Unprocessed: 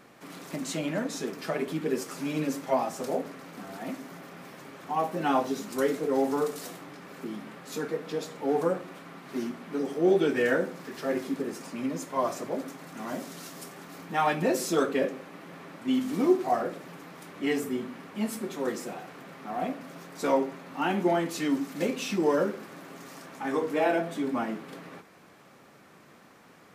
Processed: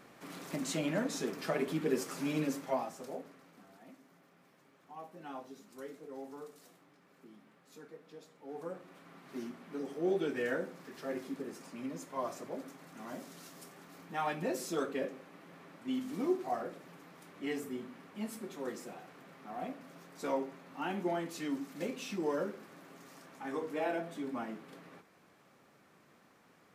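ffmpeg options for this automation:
-af "volume=7.5dB,afade=t=out:st=2.31:d=0.66:silence=0.354813,afade=t=out:st=2.97:d=0.89:silence=0.398107,afade=t=in:st=8.47:d=0.74:silence=0.298538"

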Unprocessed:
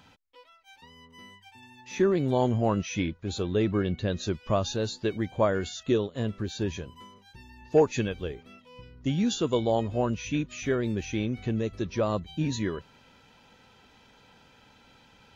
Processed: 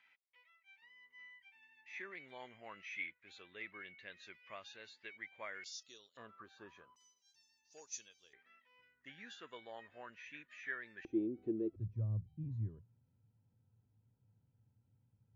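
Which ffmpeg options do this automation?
-af "asetnsamples=n=441:p=0,asendcmd='5.64 bandpass f 5300;6.17 bandpass f 1200;6.96 bandpass f 5900;8.33 bandpass f 1800;11.05 bandpass f 340;11.76 bandpass f 110',bandpass=f=2.1k:t=q:w=6.9:csg=0"

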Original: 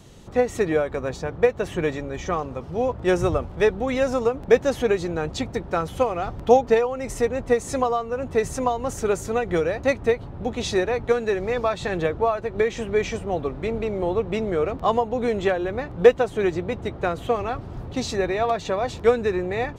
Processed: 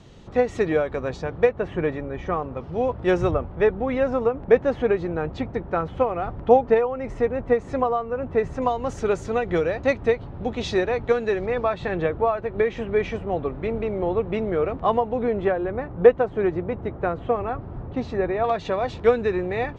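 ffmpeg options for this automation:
-af "asetnsamples=n=441:p=0,asendcmd='1.49 lowpass f 2100;2.57 lowpass f 3800;3.31 lowpass f 2100;8.62 lowpass f 4400;11.46 lowpass f 2700;15.23 lowpass f 1700;18.44 lowpass f 3800',lowpass=4.6k"

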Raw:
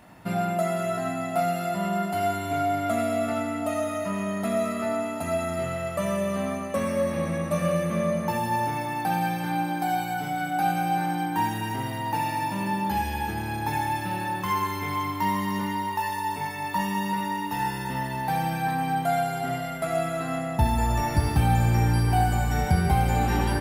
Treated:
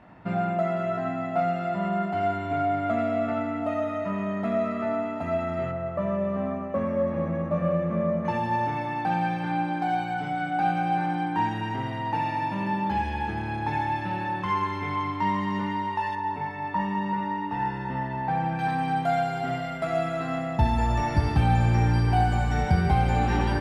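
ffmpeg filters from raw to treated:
-af "asetnsamples=n=441:p=0,asendcmd='5.71 lowpass f 1300;8.25 lowpass f 3100;16.15 lowpass f 1900;18.59 lowpass f 4600',lowpass=2.3k"

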